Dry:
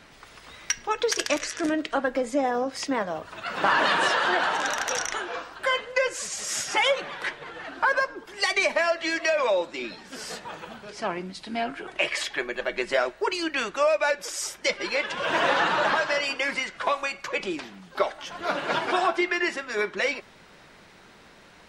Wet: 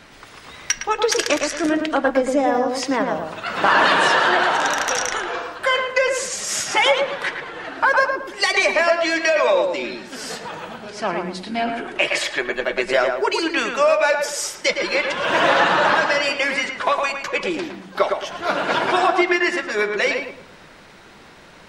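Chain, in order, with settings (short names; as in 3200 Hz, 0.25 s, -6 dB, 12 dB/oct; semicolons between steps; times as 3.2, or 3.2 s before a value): darkening echo 0.111 s, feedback 33%, low-pass 2000 Hz, level -4 dB; gain +5.5 dB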